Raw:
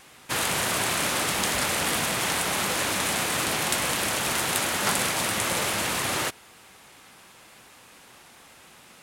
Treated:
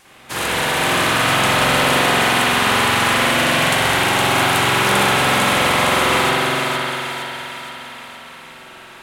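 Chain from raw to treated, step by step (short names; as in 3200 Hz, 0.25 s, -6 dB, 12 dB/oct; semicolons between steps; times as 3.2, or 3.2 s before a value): 4.17–4.6 crackle 53/s -36 dBFS; split-band echo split 670 Hz, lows 0.217 s, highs 0.465 s, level -4 dB; spring tank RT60 2.9 s, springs 45 ms, chirp 20 ms, DRR -9.5 dB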